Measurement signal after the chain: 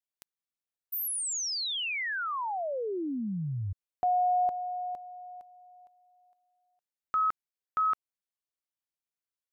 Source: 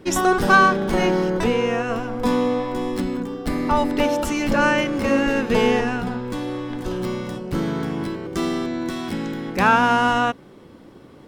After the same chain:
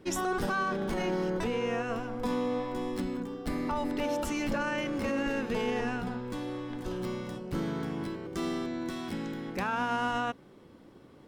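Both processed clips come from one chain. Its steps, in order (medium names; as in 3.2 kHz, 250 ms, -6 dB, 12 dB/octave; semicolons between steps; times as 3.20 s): peak limiter -13.5 dBFS; trim -9 dB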